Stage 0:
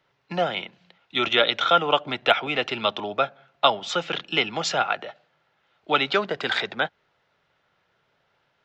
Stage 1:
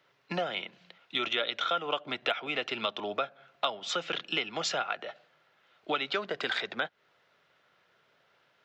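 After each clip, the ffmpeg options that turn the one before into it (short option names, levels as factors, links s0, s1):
-af "highpass=f=250:p=1,equalizer=f=850:t=o:w=0.29:g=-5,acompressor=threshold=0.0224:ratio=3,volume=1.26"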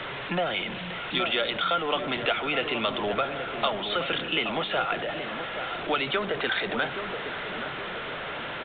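-filter_complex "[0:a]aeval=exprs='val(0)+0.5*0.0316*sgn(val(0))':c=same,asplit=2[s0][s1];[s1]adelay=823,lowpass=f=1200:p=1,volume=0.447,asplit=2[s2][s3];[s3]adelay=823,lowpass=f=1200:p=1,volume=0.48,asplit=2[s4][s5];[s5]adelay=823,lowpass=f=1200:p=1,volume=0.48,asplit=2[s6][s7];[s7]adelay=823,lowpass=f=1200:p=1,volume=0.48,asplit=2[s8][s9];[s9]adelay=823,lowpass=f=1200:p=1,volume=0.48,asplit=2[s10][s11];[s11]adelay=823,lowpass=f=1200:p=1,volume=0.48[s12];[s0][s2][s4][s6][s8][s10][s12]amix=inputs=7:normalize=0,aresample=8000,aresample=44100,volume=1.19"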